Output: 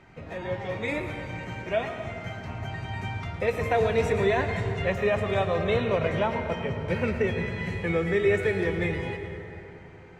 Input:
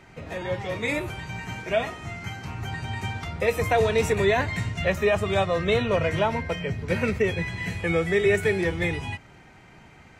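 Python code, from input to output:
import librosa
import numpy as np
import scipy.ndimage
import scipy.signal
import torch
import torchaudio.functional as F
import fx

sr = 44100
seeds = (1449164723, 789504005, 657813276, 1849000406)

p1 = fx.lowpass(x, sr, hz=3000.0, slope=6)
p2 = p1 + fx.echo_single(p1, sr, ms=111, db=-13.0, dry=0)
p3 = fx.rev_plate(p2, sr, seeds[0], rt60_s=3.9, hf_ratio=0.5, predelay_ms=120, drr_db=7.5)
y = p3 * librosa.db_to_amplitude(-2.5)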